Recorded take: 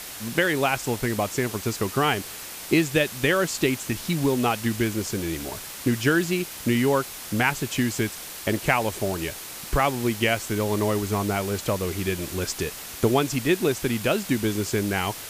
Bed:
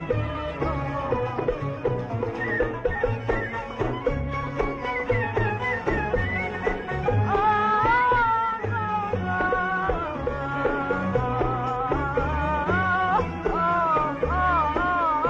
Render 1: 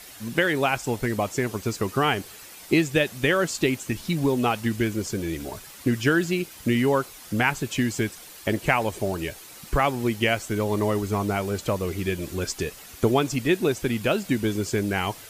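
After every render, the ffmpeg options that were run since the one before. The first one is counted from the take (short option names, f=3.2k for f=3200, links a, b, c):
-af "afftdn=nr=9:nf=-38"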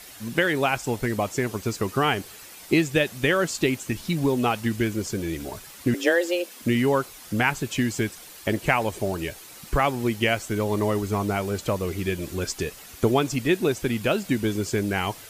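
-filter_complex "[0:a]asettb=1/sr,asplit=3[a][b][c];[a]atrim=end=5.944[d];[b]atrim=start=5.94:end=6.62,asetpts=PTS-STARTPTS,afade=t=in:d=0.004:c=qsin,afade=t=out:st=0.676:d=0.004:c=qsin,afreqshift=170[e];[c]atrim=start=6.616[f];[d][e]acrossfade=d=0.004:c1=hsin:c2=qsin[g];[g][f]acrossfade=d=0.004:c1=qsin:c2=hsin"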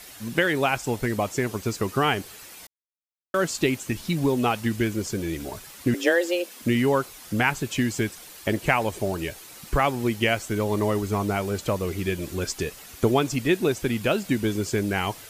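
-filter_complex "[0:a]asplit=3[a][b][c];[a]atrim=end=2.67,asetpts=PTS-STARTPTS,afade=t=out:st=2.666:d=0.004:c=hsin[d];[b]atrim=start=2.67:end=3.34,asetpts=PTS-STARTPTS,volume=0[e];[c]atrim=start=3.34,asetpts=PTS-STARTPTS,afade=t=in:d=0.004:c=hsin[f];[d][e][f]concat=n=3:v=0:a=1"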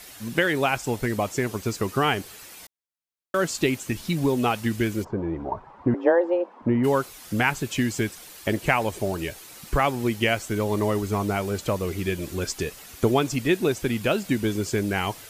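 -filter_complex "[0:a]asplit=3[a][b][c];[a]afade=t=out:st=5.03:d=0.02[d];[b]lowpass=f=940:t=q:w=4,afade=t=in:st=5.03:d=0.02,afade=t=out:st=6.83:d=0.02[e];[c]afade=t=in:st=6.83:d=0.02[f];[d][e][f]amix=inputs=3:normalize=0"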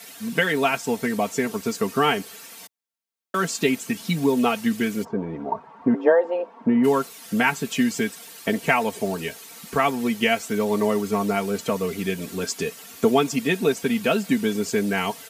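-af "highpass=f=110:w=0.5412,highpass=f=110:w=1.3066,aecho=1:1:4.4:0.75"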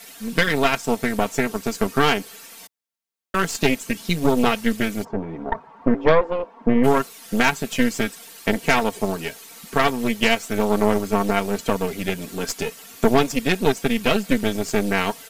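-af "aeval=exprs='0.631*(cos(1*acos(clip(val(0)/0.631,-1,1)))-cos(1*PI/2))+0.126*(cos(6*acos(clip(val(0)/0.631,-1,1)))-cos(6*PI/2))':c=same"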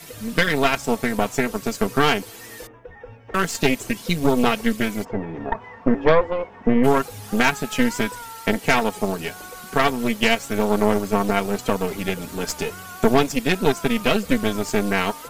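-filter_complex "[1:a]volume=-16.5dB[a];[0:a][a]amix=inputs=2:normalize=0"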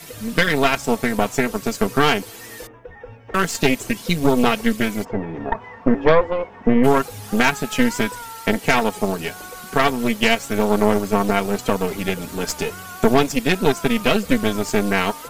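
-af "volume=2dB,alimiter=limit=-3dB:level=0:latency=1"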